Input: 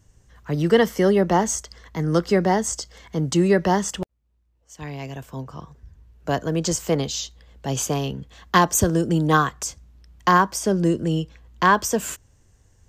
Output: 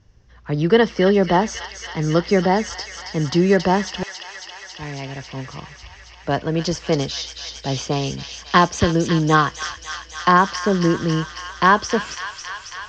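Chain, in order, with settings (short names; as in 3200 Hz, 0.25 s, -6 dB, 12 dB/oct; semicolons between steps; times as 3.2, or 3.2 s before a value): elliptic low-pass 5400 Hz, stop band 80 dB; thin delay 0.274 s, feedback 82%, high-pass 2000 Hz, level -5 dB; gain +3 dB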